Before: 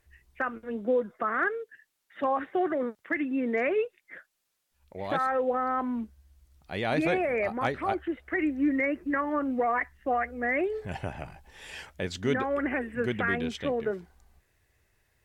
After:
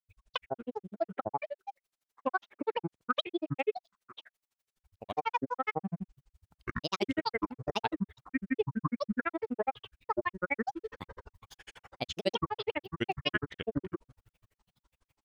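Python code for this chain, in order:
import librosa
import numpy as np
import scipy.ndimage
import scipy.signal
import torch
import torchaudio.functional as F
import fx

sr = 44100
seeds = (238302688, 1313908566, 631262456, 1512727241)

y = fx.dynamic_eq(x, sr, hz=3200.0, q=2.1, threshold_db=-51.0, ratio=4.0, max_db=7)
y = fx.granulator(y, sr, seeds[0], grain_ms=47.0, per_s=12.0, spray_ms=100.0, spread_st=12)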